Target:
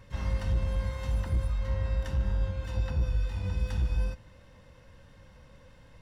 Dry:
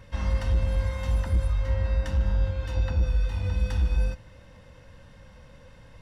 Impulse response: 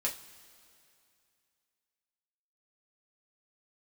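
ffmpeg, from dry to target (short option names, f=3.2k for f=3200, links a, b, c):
-filter_complex "[0:a]asplit=2[a][b];[b]asetrate=88200,aresample=44100,atempo=0.5,volume=-13dB[c];[a][c]amix=inputs=2:normalize=0,volume=-4.5dB"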